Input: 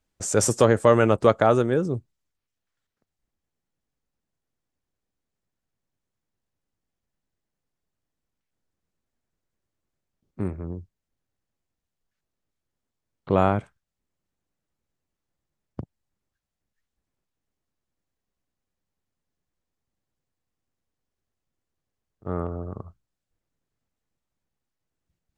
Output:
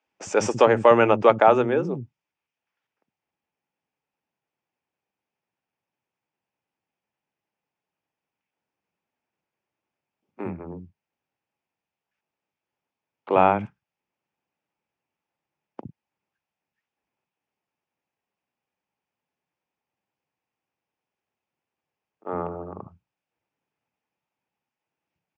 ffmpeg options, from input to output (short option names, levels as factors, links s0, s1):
-filter_complex "[0:a]highpass=180,equalizer=f=860:t=q:w=4:g=8,equalizer=f=2500:t=q:w=4:g=8,equalizer=f=4100:t=q:w=4:g=-10,lowpass=f=5300:w=0.5412,lowpass=f=5300:w=1.3066,acrossover=split=250[s0][s1];[s0]adelay=60[s2];[s2][s1]amix=inputs=2:normalize=0,volume=1.19"